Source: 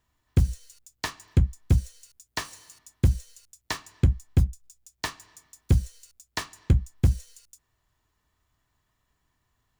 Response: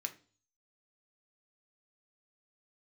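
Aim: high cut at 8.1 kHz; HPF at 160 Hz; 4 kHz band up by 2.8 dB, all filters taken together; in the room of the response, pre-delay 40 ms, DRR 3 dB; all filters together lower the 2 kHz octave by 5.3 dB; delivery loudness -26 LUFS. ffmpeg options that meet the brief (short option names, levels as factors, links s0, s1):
-filter_complex "[0:a]highpass=160,lowpass=8100,equalizer=f=2000:t=o:g=-7.5,equalizer=f=4000:t=o:g=5.5,asplit=2[s0][s1];[1:a]atrim=start_sample=2205,adelay=40[s2];[s1][s2]afir=irnorm=-1:irlink=0,volume=0.794[s3];[s0][s3]amix=inputs=2:normalize=0,volume=2.37"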